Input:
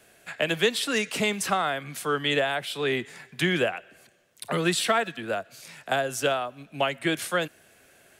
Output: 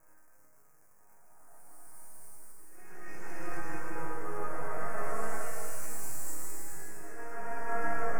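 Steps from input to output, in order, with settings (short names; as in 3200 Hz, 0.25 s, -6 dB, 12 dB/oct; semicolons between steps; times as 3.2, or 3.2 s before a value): local time reversal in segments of 0.214 s; HPF 400 Hz 12 dB/oct; Paulstretch 7.9×, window 0.25 s, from 4.07; crackle 570/s -40 dBFS; half-wave rectifier; Butterworth band-stop 3500 Hz, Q 0.61; resonator bank G#2 sus4, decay 0.52 s; gain +11 dB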